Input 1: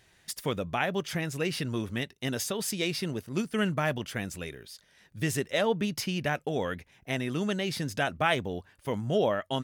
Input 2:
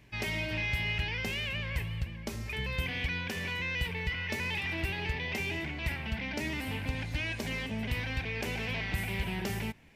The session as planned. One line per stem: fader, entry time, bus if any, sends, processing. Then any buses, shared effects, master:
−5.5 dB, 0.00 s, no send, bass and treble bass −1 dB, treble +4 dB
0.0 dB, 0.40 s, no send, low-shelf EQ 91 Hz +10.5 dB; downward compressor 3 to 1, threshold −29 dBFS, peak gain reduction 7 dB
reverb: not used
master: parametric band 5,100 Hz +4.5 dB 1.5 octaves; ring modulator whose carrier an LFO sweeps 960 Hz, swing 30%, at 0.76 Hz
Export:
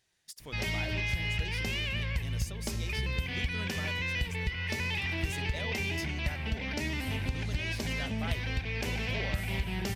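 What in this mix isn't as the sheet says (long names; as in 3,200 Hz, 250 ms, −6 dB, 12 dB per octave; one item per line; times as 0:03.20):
stem 1 −5.5 dB → −16.0 dB
master: missing ring modulator whose carrier an LFO sweeps 960 Hz, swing 30%, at 0.76 Hz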